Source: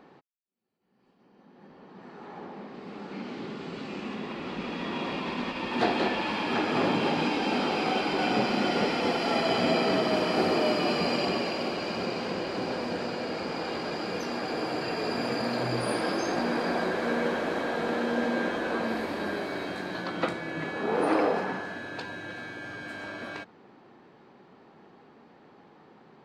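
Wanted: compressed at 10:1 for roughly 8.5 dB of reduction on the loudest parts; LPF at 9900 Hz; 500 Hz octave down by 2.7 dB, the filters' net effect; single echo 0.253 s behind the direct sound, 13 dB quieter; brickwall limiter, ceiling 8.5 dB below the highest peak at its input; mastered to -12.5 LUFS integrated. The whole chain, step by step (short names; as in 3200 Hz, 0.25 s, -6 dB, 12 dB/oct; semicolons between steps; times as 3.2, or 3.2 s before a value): LPF 9900 Hz; bell 500 Hz -3.5 dB; compressor 10:1, threshold -31 dBFS; limiter -27.5 dBFS; echo 0.253 s -13 dB; gain +24.5 dB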